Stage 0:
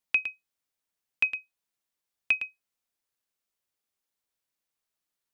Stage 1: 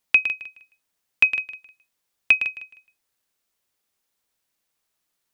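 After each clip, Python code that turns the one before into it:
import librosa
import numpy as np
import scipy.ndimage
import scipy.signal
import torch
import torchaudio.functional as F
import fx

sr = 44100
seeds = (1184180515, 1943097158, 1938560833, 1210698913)

y = fx.echo_feedback(x, sr, ms=155, feedback_pct=23, wet_db=-13.0)
y = F.gain(torch.from_numpy(y), 8.5).numpy()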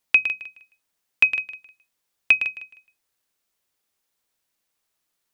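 y = fx.hum_notches(x, sr, base_hz=60, count=4)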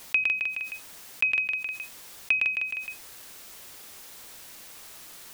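y = fx.env_flatten(x, sr, amount_pct=70)
y = F.gain(torch.from_numpy(y), -8.5).numpy()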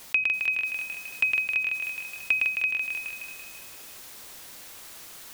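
y = fx.echo_feedback(x, sr, ms=335, feedback_pct=31, wet_db=-4.5)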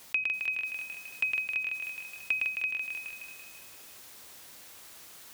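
y = scipy.signal.sosfilt(scipy.signal.butter(2, 40.0, 'highpass', fs=sr, output='sos'), x)
y = F.gain(torch.from_numpy(y), -5.5).numpy()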